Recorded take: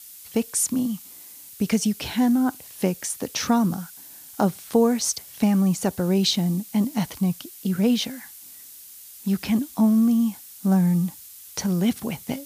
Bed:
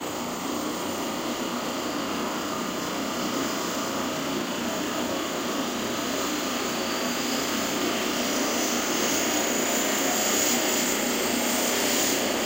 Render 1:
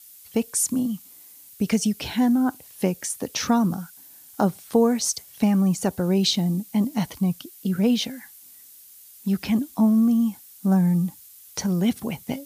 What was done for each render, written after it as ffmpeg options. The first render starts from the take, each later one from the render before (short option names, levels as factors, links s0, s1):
-af "afftdn=nr=6:nf=-44"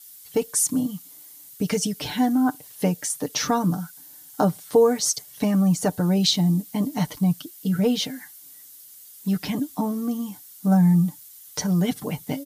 -af "equalizer=f=2500:t=o:w=0.23:g=-5.5,aecho=1:1:6.7:0.73"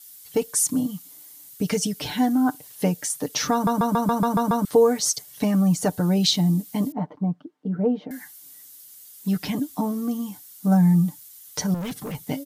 -filter_complex "[0:a]asettb=1/sr,asplit=3[s0][s1][s2];[s0]atrim=end=6.924[s3];[s1]atrim=start=6.92:end=8.11,asetpts=PTS-STARTPTS,afade=t=in:d=0.004:c=qsin,afade=t=out:st=1.186:d=0.004:c=qsin,asuperpass=centerf=440:order=4:qfactor=0.56[s4];[s2]atrim=start=8.106[s5];[s3][s4]acrossfade=d=0.004:c1=hsin:c2=qsin[s6];[s6][s5]acrossfade=d=0.004:c1=qsin:c2=hsin,asettb=1/sr,asplit=3[s7][s8][s9];[s7]atrim=end=11.744[s10];[s8]atrim=start=11.74:end=12.15,asetpts=PTS-STARTPTS,afade=t=in:d=0.004:c=qsin,afade=t=out:st=0.406:d=0.004:c=qsin,volume=25.1,asoftclip=hard,volume=0.0398[s11];[s9]atrim=start=12.146[s12];[s10][s11]acrossfade=d=0.004:c1=hsin:c2=qsin[s13];[s13][s12]acrossfade=d=0.004:c1=qsin:c2=hsin,asplit=9[s14][s15][s16][s17][s18][s19][s20][s21][s22];[s14]atrim=end=3.672[s23];[s15]atrim=start=3.528:end=3.672[s24];[s16]atrim=start=3.528:end=3.672[s25];[s17]atrim=start=3.528:end=3.672[s26];[s18]atrim=start=3.528:end=3.672[s27];[s19]atrim=start=3.528:end=3.672[s28];[s20]atrim=start=3.528:end=3.672[s29];[s21]atrim=start=3.528:end=3.672[s30];[s22]atrim=start=4.648[s31];[s23][s24]acrossfade=d=0.004:c1=hsin:c2=hsin[s32];[s32][s25]acrossfade=d=0.004:c1=hsin:c2=hsin[s33];[s33][s26]acrossfade=d=0.004:c1=hsin:c2=hsin[s34];[s34][s27]acrossfade=d=0.004:c1=hsin:c2=hsin[s35];[s35][s28]acrossfade=d=0.004:c1=hsin:c2=hsin[s36];[s36][s29]acrossfade=d=0.004:c1=hsin:c2=hsin[s37];[s37][s30]acrossfade=d=0.004:c1=hsin:c2=hsin[s38];[s38][s31]acrossfade=d=0.004:c1=hsin:c2=hsin"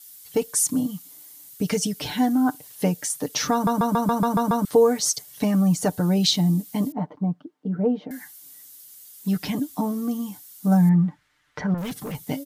-filter_complex "[0:a]asettb=1/sr,asplit=3[s0][s1][s2];[s0]atrim=end=10.894[s3];[s1]atrim=start=10.89:end=11.78,asetpts=PTS-STARTPTS,afade=t=in:d=0.004:c=qsin,afade=t=out:st=0.886:d=0.004:c=qsin,lowpass=f=1800:t=q:w=1.8[s4];[s2]atrim=start=11.776[s5];[s3][s4]acrossfade=d=0.004:c1=hsin:c2=qsin[s6];[s6][s5]acrossfade=d=0.004:c1=qsin:c2=hsin"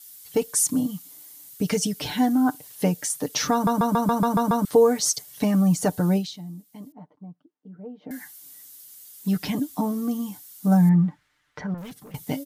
-filter_complex "[0:a]asplit=4[s0][s1][s2][s3];[s0]atrim=end=6.29,asetpts=PTS-STARTPTS,afade=t=out:st=6.16:d=0.13:c=qua:silence=0.141254[s4];[s1]atrim=start=6.29:end=7.97,asetpts=PTS-STARTPTS,volume=0.141[s5];[s2]atrim=start=7.97:end=12.14,asetpts=PTS-STARTPTS,afade=t=in:d=0.13:c=qua:silence=0.141254,afade=t=out:st=3.08:d=1.09:silence=0.188365[s6];[s3]atrim=start=12.14,asetpts=PTS-STARTPTS,afade=t=in:d=0.004:c=hsin:silence=0.188365[s7];[s4][s5][s6][s7]concat=n=4:v=0:a=1"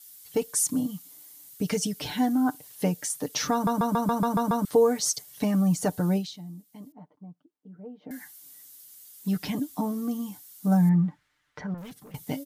-af "volume=0.668"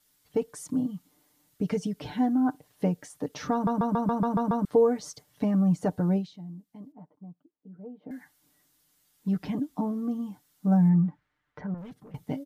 -af "lowpass=f=1000:p=1"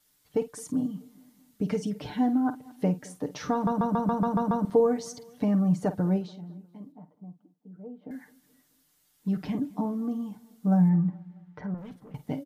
-filter_complex "[0:a]asplit=2[s0][s1];[s1]adelay=49,volume=0.224[s2];[s0][s2]amix=inputs=2:normalize=0,asplit=2[s3][s4];[s4]adelay=215,lowpass=f=3800:p=1,volume=0.075,asplit=2[s5][s6];[s6]adelay=215,lowpass=f=3800:p=1,volume=0.5,asplit=2[s7][s8];[s8]adelay=215,lowpass=f=3800:p=1,volume=0.5[s9];[s3][s5][s7][s9]amix=inputs=4:normalize=0"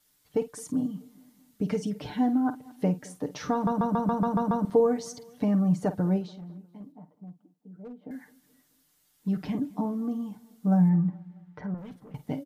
-filter_complex "[0:a]asettb=1/sr,asplit=3[s0][s1][s2];[s0]atrim=end=6.344[s3];[s1]atrim=start=6.34:end=7.95,asetpts=PTS-STARTPTS,afade=t=in:d=0.004:c=qsin,afade=t=out:st=1.606:d=0.004:c=qsin,asoftclip=type=hard:threshold=0.0133[s4];[s2]atrim=start=7.946[s5];[s3][s4]acrossfade=d=0.004:c1=hsin:c2=qsin[s6];[s6][s5]acrossfade=d=0.004:c1=qsin:c2=hsin"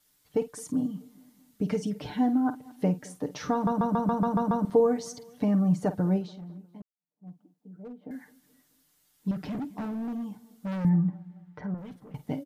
-filter_complex "[0:a]asettb=1/sr,asplit=3[s0][s1][s2];[s0]atrim=end=9.314[s3];[s1]atrim=start=9.31:end=10.85,asetpts=PTS-STARTPTS,afade=t=in:d=0.004:c=qsin,afade=t=out:st=1.536:d=0.004:c=qsin,volume=33.5,asoftclip=hard,volume=0.0299[s4];[s2]atrim=start=10.846[s5];[s3][s4]acrossfade=d=0.004:c1=hsin:c2=qsin[s6];[s6][s5]acrossfade=d=0.004:c1=qsin:c2=hsin,asplit=2[s7][s8];[s7]atrim=end=6.82,asetpts=PTS-STARTPTS,afade=t=out:st=6.816:d=0.004:c=hsin[s9];[s8]atrim=start=6.82,asetpts=PTS-STARTPTS,afade=t=in:d=0.45:c=exp[s10];[s9][s10]concat=n=2:v=0:a=1"